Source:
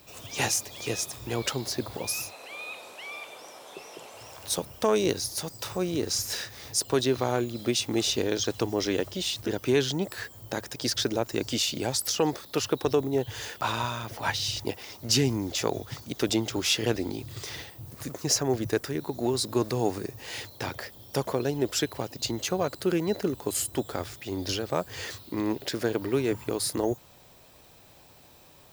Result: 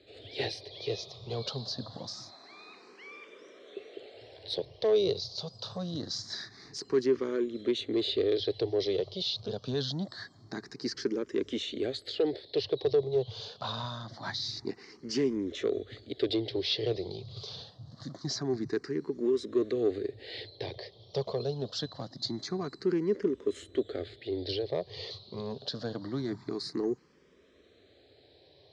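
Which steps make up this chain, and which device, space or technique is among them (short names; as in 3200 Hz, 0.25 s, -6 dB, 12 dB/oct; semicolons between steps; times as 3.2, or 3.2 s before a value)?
barber-pole phaser into a guitar amplifier (endless phaser +0.25 Hz; soft clip -20.5 dBFS, distortion -17 dB; speaker cabinet 90–4600 Hz, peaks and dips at 410 Hz +7 dB, 900 Hz -9 dB, 1400 Hz -6 dB, 2600 Hz -9 dB, 4200 Hz +8 dB); gain -1.5 dB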